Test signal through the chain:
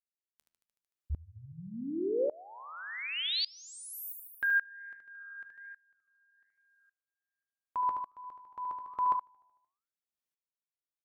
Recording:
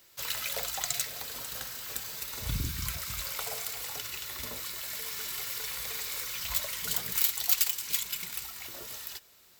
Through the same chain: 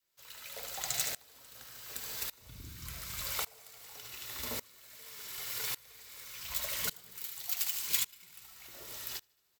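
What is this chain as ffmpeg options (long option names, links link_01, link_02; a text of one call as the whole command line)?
ffmpeg -i in.wav -af "aecho=1:1:75|150|225|300|375|450|525:0.398|0.235|0.139|0.0818|0.0482|0.0285|0.0168,flanger=delay=7.7:depth=5.4:regen=86:speed=1.2:shape=sinusoidal,bandreject=frequency=50:width_type=h:width=6,bandreject=frequency=100:width_type=h:width=6,bandreject=frequency=150:width_type=h:width=6,bandreject=frequency=200:width_type=h:width=6,adynamicequalizer=threshold=0.002:dfrequency=360:dqfactor=1.2:tfrequency=360:tqfactor=1.2:attack=5:release=100:ratio=0.375:range=1.5:mode=boostabove:tftype=bell,aeval=exprs='val(0)*pow(10,-25*if(lt(mod(-0.87*n/s,1),2*abs(-0.87)/1000),1-mod(-0.87*n/s,1)/(2*abs(-0.87)/1000),(mod(-0.87*n/s,1)-2*abs(-0.87)/1000)/(1-2*abs(-0.87)/1000))/20)':channel_layout=same,volume=6dB" out.wav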